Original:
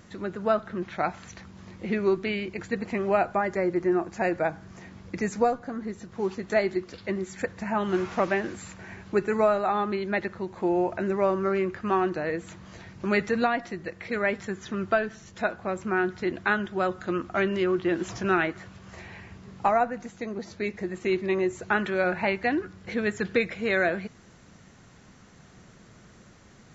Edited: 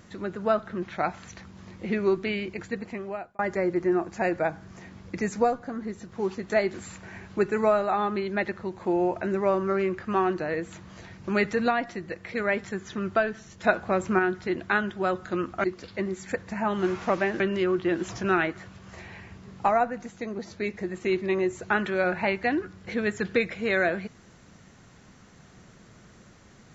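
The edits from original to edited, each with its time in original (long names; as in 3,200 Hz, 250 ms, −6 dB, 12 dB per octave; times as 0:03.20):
0:02.50–0:03.39: fade out
0:06.74–0:08.50: move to 0:17.40
0:15.40–0:15.95: clip gain +5 dB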